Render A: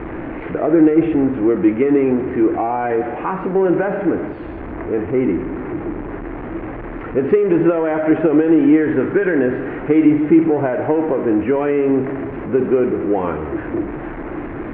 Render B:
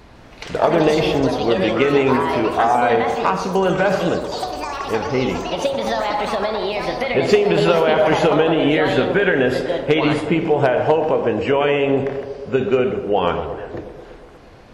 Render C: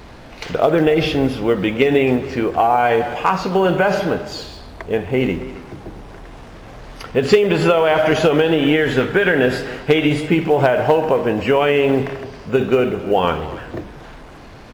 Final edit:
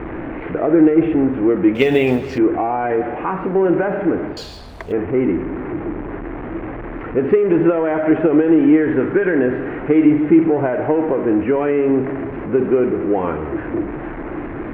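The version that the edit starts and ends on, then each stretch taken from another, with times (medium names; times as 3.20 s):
A
1.75–2.38 s: from C
4.37–4.92 s: from C
not used: B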